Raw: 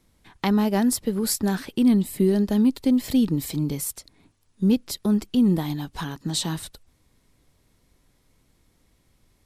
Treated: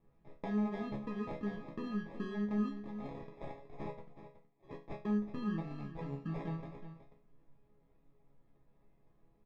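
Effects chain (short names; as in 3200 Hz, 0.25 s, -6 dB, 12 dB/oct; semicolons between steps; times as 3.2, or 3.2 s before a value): 2.86–4.88 HPF 750 Hz 24 dB/oct; compressor 2.5:1, threshold -34 dBFS, peak gain reduction 13 dB; sample-and-hold 30×; tape spacing loss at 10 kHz 37 dB; resonator bank C#3 minor, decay 0.32 s; echo 0.371 s -11.5 dB; gain +10 dB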